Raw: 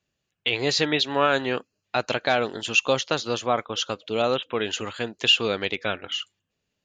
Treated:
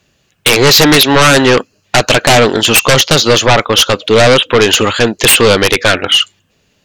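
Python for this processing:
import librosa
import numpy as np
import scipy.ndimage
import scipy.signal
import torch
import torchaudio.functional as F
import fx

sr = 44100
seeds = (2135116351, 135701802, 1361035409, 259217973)

y = fx.fold_sine(x, sr, drive_db=14, ceiling_db=-7.0)
y = y * librosa.db_to_amplitude(4.5)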